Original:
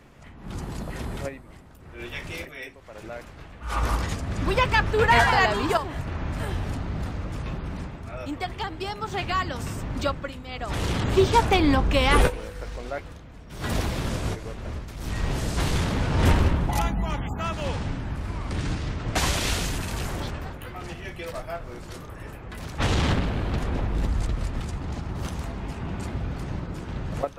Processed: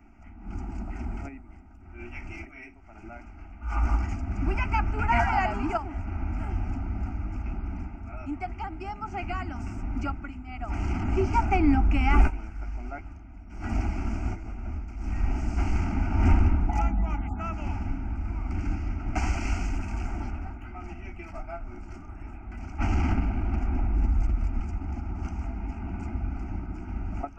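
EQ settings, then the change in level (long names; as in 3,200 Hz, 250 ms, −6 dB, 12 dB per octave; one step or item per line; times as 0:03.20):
head-to-tape spacing loss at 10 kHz 21 dB
phaser with its sweep stopped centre 710 Hz, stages 8
phaser with its sweep stopped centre 2,600 Hz, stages 8
+4.0 dB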